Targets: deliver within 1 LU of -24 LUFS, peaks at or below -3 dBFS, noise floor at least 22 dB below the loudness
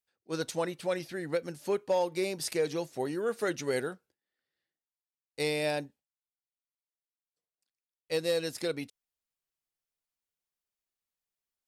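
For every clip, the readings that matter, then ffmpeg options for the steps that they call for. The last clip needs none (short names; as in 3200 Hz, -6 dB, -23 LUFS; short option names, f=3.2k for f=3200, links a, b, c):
loudness -33.0 LUFS; peak -17.5 dBFS; loudness target -24.0 LUFS
-> -af "volume=9dB"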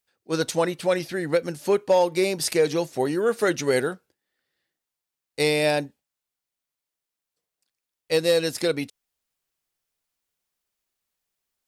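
loudness -24.0 LUFS; peak -8.5 dBFS; noise floor -87 dBFS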